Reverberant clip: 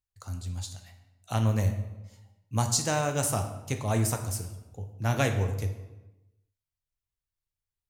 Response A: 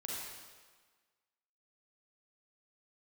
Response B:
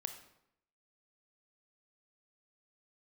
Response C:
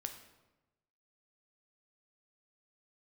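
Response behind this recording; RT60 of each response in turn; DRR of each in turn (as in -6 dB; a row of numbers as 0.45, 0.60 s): C; 1.5, 0.75, 1.1 s; -5.0, 7.0, 5.5 dB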